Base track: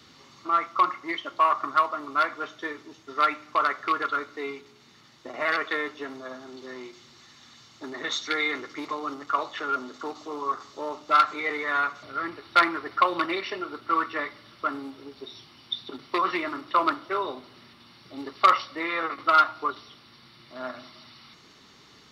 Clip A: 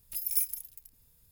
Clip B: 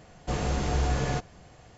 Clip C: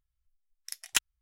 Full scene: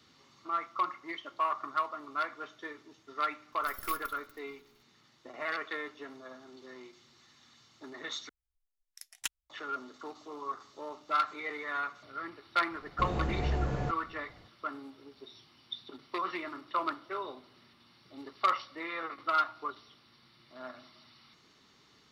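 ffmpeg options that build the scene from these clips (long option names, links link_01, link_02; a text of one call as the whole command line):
ffmpeg -i bed.wav -i cue0.wav -i cue1.wav -i cue2.wav -filter_complex "[0:a]volume=-9.5dB[link_01];[1:a]aeval=exprs='max(val(0),0)':channel_layout=same[link_02];[3:a]equalizer=frequency=470:width=7.1:gain=-14.5[link_03];[2:a]lowpass=frequency=1300:poles=1[link_04];[link_01]asplit=2[link_05][link_06];[link_05]atrim=end=8.294[link_07];[link_03]atrim=end=1.21,asetpts=PTS-STARTPTS,volume=-9.5dB[link_08];[link_06]atrim=start=9.496[link_09];[link_02]atrim=end=1.31,asetpts=PTS-STARTPTS,volume=-9dB,afade=type=in:duration=0.004:curve=hsin,afade=type=out:start_time=1.306:duration=0.004:curve=hsin,adelay=3520[link_10];[link_04]atrim=end=1.77,asetpts=PTS-STARTPTS,volume=-4.5dB,afade=type=in:duration=0.004:curve=hsin,afade=type=out:start_time=1.766:duration=0.004:curve=hsin,adelay=12710[link_11];[link_07][link_08]acrossfade=duration=0.004:curve1=hsin:curve2=hsin[link_12];[link_12][link_09]acrossfade=duration=0.004:curve1=hsin:curve2=hsin[link_13];[link_13][link_10][link_11]amix=inputs=3:normalize=0" out.wav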